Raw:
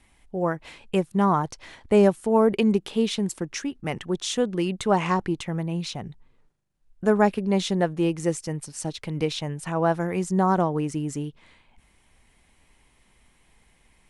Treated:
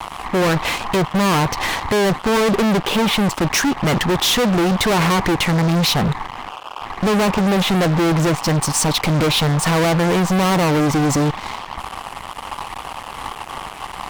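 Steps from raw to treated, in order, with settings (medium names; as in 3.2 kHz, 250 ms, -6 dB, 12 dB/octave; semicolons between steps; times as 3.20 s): low-pass that closes with the level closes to 1.7 kHz, closed at -20 dBFS; band noise 730–1200 Hz -51 dBFS; fuzz box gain 42 dB, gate -50 dBFS; trim -1.5 dB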